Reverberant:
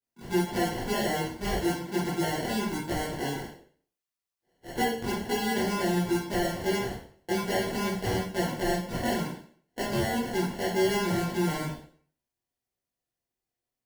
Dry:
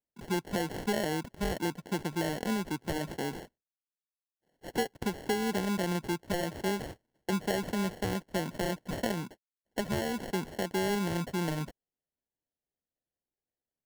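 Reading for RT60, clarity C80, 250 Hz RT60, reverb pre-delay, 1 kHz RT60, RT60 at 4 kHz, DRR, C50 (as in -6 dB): 0.50 s, 8.5 dB, 0.50 s, 6 ms, 0.50 s, 0.45 s, -10.0 dB, 3.0 dB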